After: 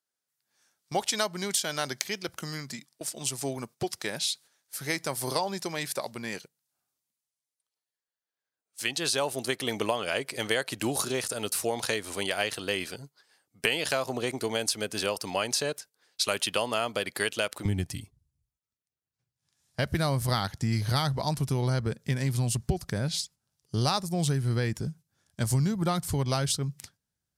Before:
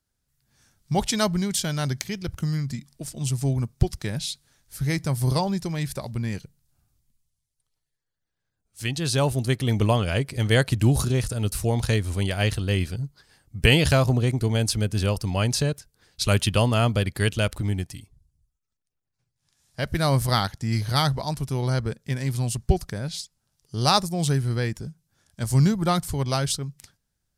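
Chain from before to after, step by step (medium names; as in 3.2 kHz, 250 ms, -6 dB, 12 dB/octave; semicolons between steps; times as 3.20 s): high-pass 420 Hz 12 dB/octave, from 17.65 s 74 Hz; gate -49 dBFS, range -9 dB; compression 5:1, threshold -27 dBFS, peak gain reduction 12 dB; trim +3 dB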